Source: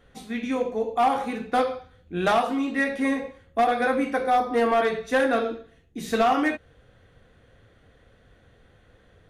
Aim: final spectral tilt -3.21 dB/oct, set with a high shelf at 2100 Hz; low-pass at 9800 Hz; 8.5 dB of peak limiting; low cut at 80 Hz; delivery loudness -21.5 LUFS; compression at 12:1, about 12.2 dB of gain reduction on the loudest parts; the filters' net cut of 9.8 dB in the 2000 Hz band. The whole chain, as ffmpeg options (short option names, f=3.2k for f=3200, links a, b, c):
-af "highpass=80,lowpass=9.8k,equalizer=f=2k:t=o:g=-8.5,highshelf=f=2.1k:g=-8,acompressor=threshold=-31dB:ratio=12,volume=16.5dB,alimiter=limit=-12.5dB:level=0:latency=1"